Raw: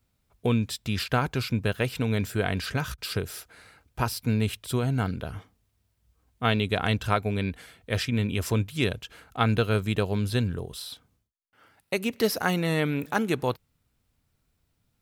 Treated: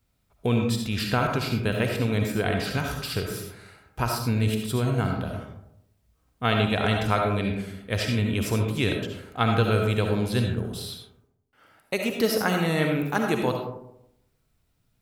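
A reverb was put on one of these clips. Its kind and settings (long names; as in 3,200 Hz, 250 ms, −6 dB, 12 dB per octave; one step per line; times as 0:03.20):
comb and all-pass reverb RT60 0.81 s, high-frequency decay 0.35×, pre-delay 30 ms, DRR 2 dB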